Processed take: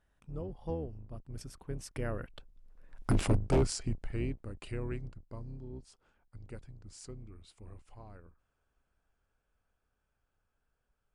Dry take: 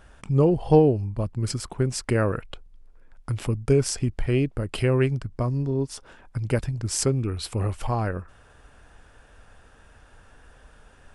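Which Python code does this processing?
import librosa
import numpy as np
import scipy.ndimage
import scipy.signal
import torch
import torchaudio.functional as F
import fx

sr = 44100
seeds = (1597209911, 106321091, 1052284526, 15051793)

y = fx.octave_divider(x, sr, octaves=2, level_db=0.0)
y = fx.doppler_pass(y, sr, speed_mps=21, closest_m=3.3, pass_at_s=3.13)
y = 10.0 ** (-21.0 / 20.0) * (np.abs((y / 10.0 ** (-21.0 / 20.0) + 3.0) % 4.0 - 2.0) - 1.0)
y = y * librosa.db_to_amplitude(2.5)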